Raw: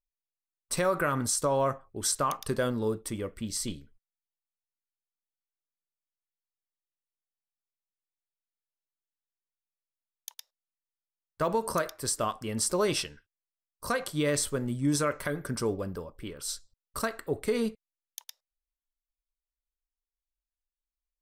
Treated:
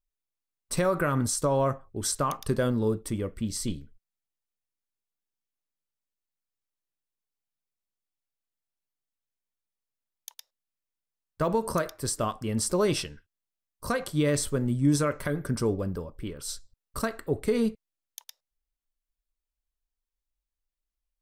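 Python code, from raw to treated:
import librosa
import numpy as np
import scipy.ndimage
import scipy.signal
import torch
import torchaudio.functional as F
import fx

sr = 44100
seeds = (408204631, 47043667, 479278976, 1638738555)

y = fx.low_shelf(x, sr, hz=360.0, db=8.0)
y = y * librosa.db_to_amplitude(-1.0)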